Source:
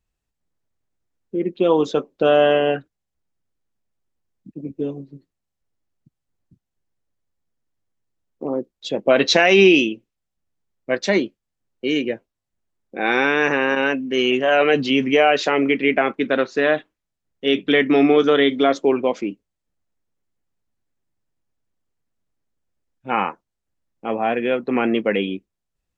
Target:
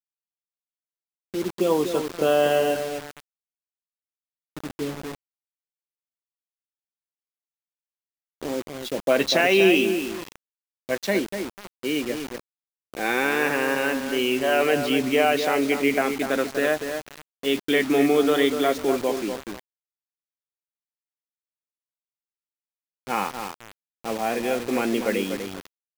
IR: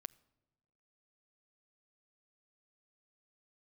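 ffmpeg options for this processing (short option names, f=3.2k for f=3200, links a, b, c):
-filter_complex "[0:a]asettb=1/sr,asplit=3[a][b][c];[a]atrim=end=9.224[d];[b]atrim=start=9.22:end=9.8,asetpts=PTS-STARTPTS,afade=t=in:d=0.004:c=qsin,afade=t=out:st=0.576:d=0.004:c=qsin,bandreject=f=50:t=h:w=6,bandreject=f=100:t=h:w=6,bandreject=f=150:t=h:w=6,bandreject=f=200:t=h:w=6,bandreject=f=250:t=h:w=6,bandreject=f=300:t=h:w=6[e];[c]atrim=start=9.796[f];[d][e]acrossfade=d=0.004:c1=hsin:c2=qsin[g];[g][f]acrossfade=d=0.004:c1=qsin:c2=hsin,asplit=2[h][i];[i]adelay=244,lowpass=f=1.9k:p=1,volume=-7dB,asplit=2[j][k];[k]adelay=244,lowpass=f=1.9k:p=1,volume=0.27,asplit=2[l][m];[m]adelay=244,lowpass=f=1.9k:p=1,volume=0.27[n];[j][l][n]amix=inputs=3:normalize=0[o];[h][o]amix=inputs=2:normalize=0,acrusher=bits=4:mix=0:aa=0.000001,volume=-5dB"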